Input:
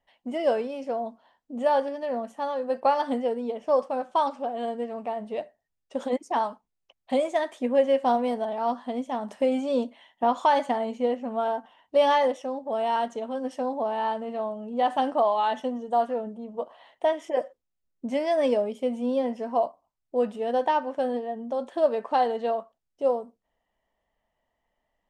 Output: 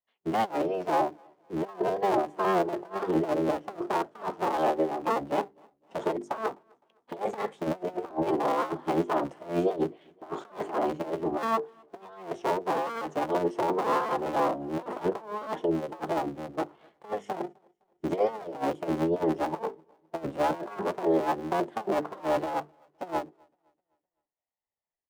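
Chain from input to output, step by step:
sub-harmonics by changed cycles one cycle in 3, inverted
low-shelf EQ 150 Hz −7.5 dB
mains-hum notches 50/100/150/200/250/300/350/400/450 Hz
compressor whose output falls as the input rises −29 dBFS, ratio −0.5
repeating echo 256 ms, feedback 54%, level −20.5 dB
every bin expanded away from the loudest bin 1.5 to 1
level +1.5 dB

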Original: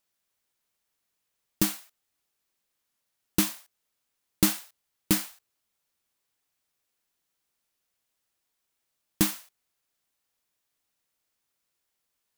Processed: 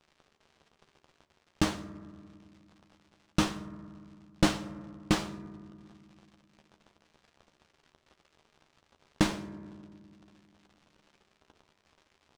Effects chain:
parametric band 330 Hz −6 dB 2.3 octaves
surface crackle 170 per second −46 dBFS
in parallel at −5.5 dB: decimation without filtering 18×
on the sum: high-frequency loss of the air 110 metres
double-tracking delay 13 ms −8 dB
convolution reverb RT60 2.0 s, pre-delay 3 ms, DRR 12.5 dB

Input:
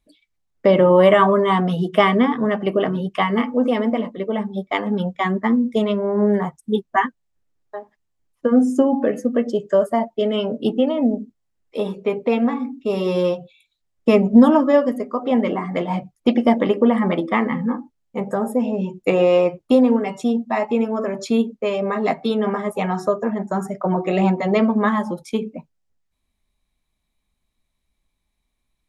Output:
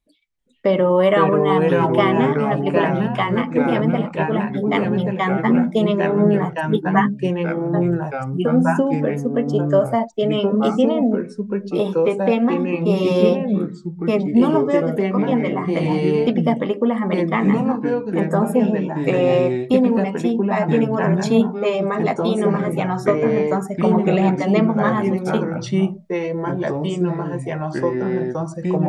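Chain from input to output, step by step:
automatic gain control
delay with pitch and tempo change per echo 387 ms, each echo −3 semitones, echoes 2
level −5.5 dB

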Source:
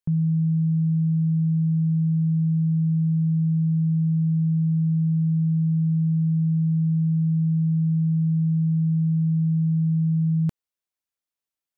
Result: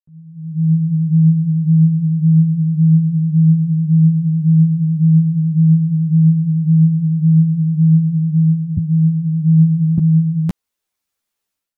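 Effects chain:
fade in at the beginning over 0.90 s
0:08.77–0:09.98: low shelf with overshoot 150 Hz +11.5 dB, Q 3
automatic gain control gain up to 15.5 dB
string-ensemble chorus

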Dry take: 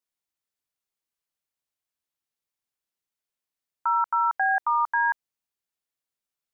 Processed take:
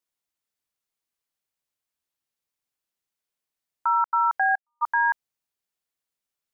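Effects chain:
0:03.96–0:04.81: gate pattern "...x.xxxxx." 178 BPM −60 dB
level +1.5 dB

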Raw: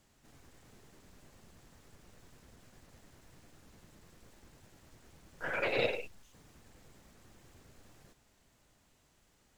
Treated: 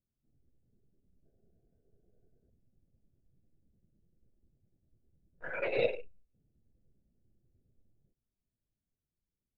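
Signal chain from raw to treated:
adaptive Wiener filter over 41 samples
0:01.25–0:02.50: hollow resonant body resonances 440/660/1,500 Hz, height 9 dB, ringing for 20 ms
coupled-rooms reverb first 0.27 s, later 2 s, from −27 dB, DRR 18 dB
every bin expanded away from the loudest bin 1.5 to 1

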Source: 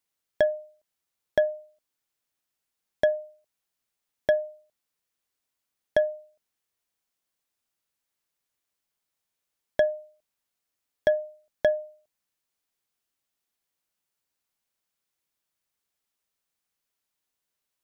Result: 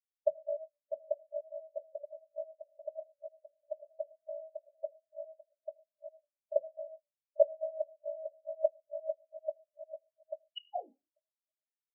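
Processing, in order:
feedback delay that plays each chunk backwards 627 ms, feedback 65%, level −1.5 dB
sound drawn into the spectrogram fall, 0:15.77–0:16.29, 210–3,100 Hz −17 dBFS
Chebyshev band-stop filter 500–2,900 Hz, order 2
parametric band 590 Hz +3 dB 1.2 octaves
downward compressor 6 to 1, threshold −37 dBFS, peak gain reduction 20 dB
mains-hum notches 60/120/180/240/300 Hz
phase-vocoder stretch with locked phases 0.67×
transient designer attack +12 dB, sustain −4 dB
ring modulation 28 Hz
convolution reverb RT60 1.0 s, pre-delay 23 ms, DRR 3 dB
every bin expanded away from the loudest bin 4 to 1
level +2.5 dB

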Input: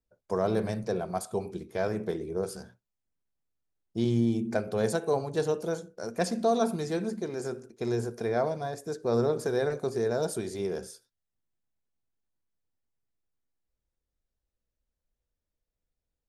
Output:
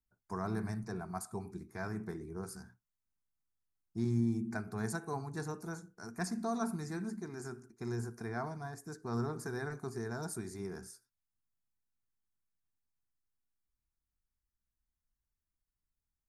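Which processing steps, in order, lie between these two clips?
phaser with its sweep stopped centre 1,300 Hz, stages 4
level −3.5 dB

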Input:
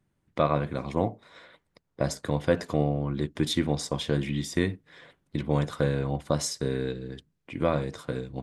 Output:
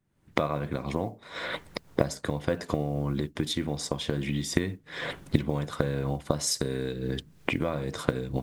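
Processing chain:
camcorder AGC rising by 58 dB per second
0:06.47–0:06.96: high-shelf EQ 7,100 Hz +11.5 dB
noise that follows the level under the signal 35 dB
level −5.5 dB

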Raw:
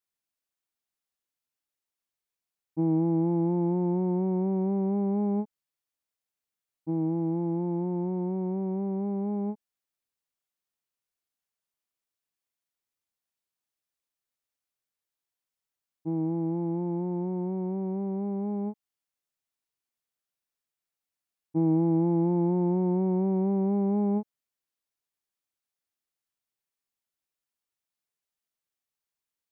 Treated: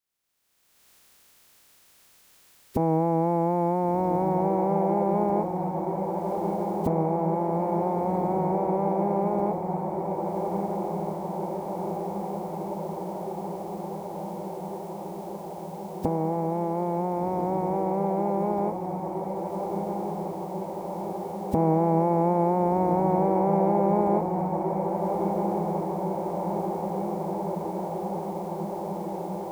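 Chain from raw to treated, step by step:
ceiling on every frequency bin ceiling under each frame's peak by 19 dB
camcorder AGC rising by 34 dB per second
feedback delay with all-pass diffusion 1,459 ms, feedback 79%, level −5.5 dB
level +2 dB

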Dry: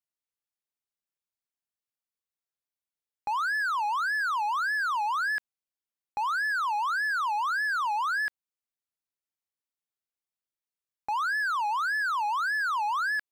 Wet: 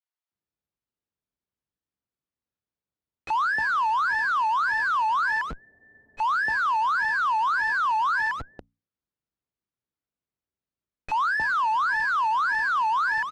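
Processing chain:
low-shelf EQ 320 Hz +8.5 dB
mains-hum notches 60/120/180/240 Hz
noise that follows the level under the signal 29 dB
three-band delay without the direct sound highs, mids, lows 30/310 ms, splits 680/2,100 Hz
frequency shifter +39 Hz
in parallel at −4.5 dB: comparator with hysteresis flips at −49 dBFS
on the sum: head-to-tape spacing loss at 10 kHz 23 dB
frozen spectrum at 0:05.64, 0.55 s
level +6 dB

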